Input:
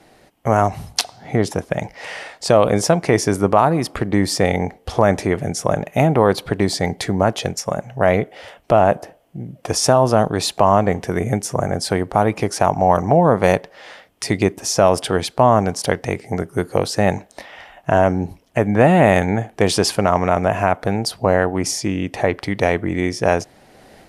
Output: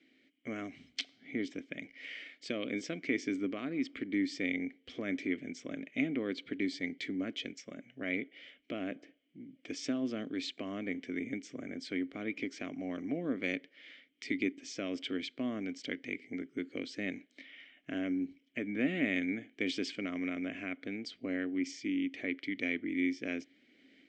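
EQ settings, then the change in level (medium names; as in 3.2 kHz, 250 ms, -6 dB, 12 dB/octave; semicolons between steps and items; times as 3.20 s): vowel filter i; brick-wall FIR low-pass 8.5 kHz; peaking EQ 120 Hz -11 dB 2.6 oct; 0.0 dB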